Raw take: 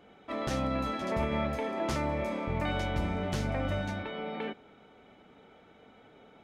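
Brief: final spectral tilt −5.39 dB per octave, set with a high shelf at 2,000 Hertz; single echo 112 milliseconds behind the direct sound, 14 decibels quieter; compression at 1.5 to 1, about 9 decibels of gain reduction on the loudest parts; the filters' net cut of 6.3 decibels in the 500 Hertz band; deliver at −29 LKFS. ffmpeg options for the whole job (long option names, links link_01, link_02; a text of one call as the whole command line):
ffmpeg -i in.wav -af "equalizer=frequency=500:width_type=o:gain=-8,highshelf=frequency=2000:gain=-3.5,acompressor=threshold=-54dB:ratio=1.5,aecho=1:1:112:0.2,volume=14.5dB" out.wav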